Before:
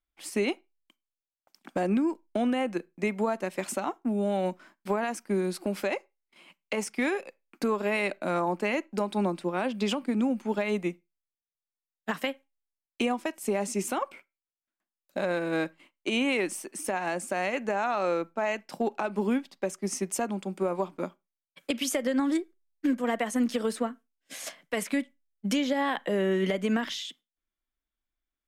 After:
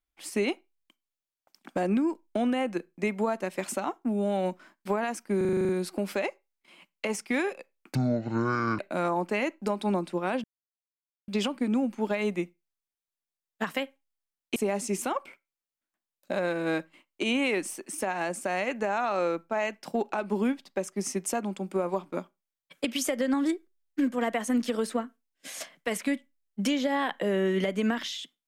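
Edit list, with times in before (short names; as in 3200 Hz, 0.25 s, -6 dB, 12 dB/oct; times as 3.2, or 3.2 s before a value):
5.37 stutter 0.04 s, 9 plays
7.63–8.1 speed 56%
9.75 insert silence 0.84 s
13.03–13.42 cut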